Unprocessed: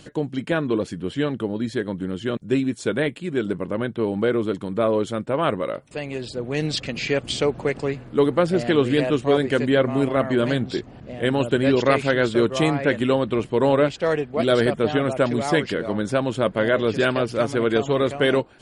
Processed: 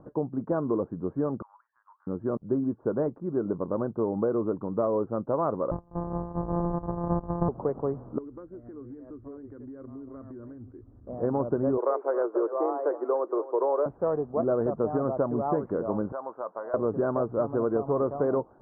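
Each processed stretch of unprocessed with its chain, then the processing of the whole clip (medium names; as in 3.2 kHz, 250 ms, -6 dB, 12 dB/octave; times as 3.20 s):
1.42–2.07 s: steep high-pass 1 kHz 48 dB/octave + compression 4:1, threshold -48 dBFS
5.71–7.49 s: sorted samples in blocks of 256 samples + bass shelf 96 Hz +11 dB + band-stop 1.4 kHz, Q 8.3
8.18–11.07 s: FFT filter 110 Hz 0 dB, 150 Hz -24 dB, 270 Hz -6 dB, 810 Hz -25 dB, 2 kHz -3 dB, 4.4 kHz 0 dB, 8.2 kHz +14 dB + compression 10:1, threshold -34 dBFS
11.77–13.86 s: steep high-pass 340 Hz 48 dB/octave + delay 274 ms -17 dB
16.12–16.74 s: high-pass 800 Hz + compression 4:1, threshold -26 dBFS
whole clip: steep low-pass 1.2 kHz 48 dB/octave; bass shelf 360 Hz -5.5 dB; compression, threshold -22 dBFS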